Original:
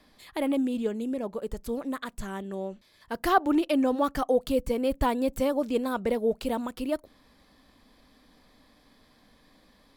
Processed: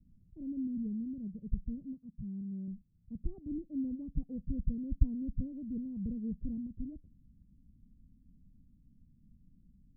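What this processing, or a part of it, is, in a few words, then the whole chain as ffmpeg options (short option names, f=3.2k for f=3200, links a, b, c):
the neighbour's flat through the wall: -filter_complex "[0:a]lowpass=f=170:w=0.5412,lowpass=f=170:w=1.3066,equalizer=f=190:t=o:w=0.77:g=3,asettb=1/sr,asplit=3[a][b][c];[a]atrim=end=1.944[d];[b]atrim=start=1.94:end=2.68,asetpts=PTS-STARTPTS,afade=t=in:d=0.004:c=qsin,afade=t=out:st=0.736:d=0.004:c=qsin,highpass=f=170:p=1[e];[c]atrim=start=2.676[f];[d][e]acrossfade=d=0.004:c1=hsin:c2=qsin[g];[g][f]acrossfade=d=0.004:c1=qsin:c2=hsin,volume=4.5dB"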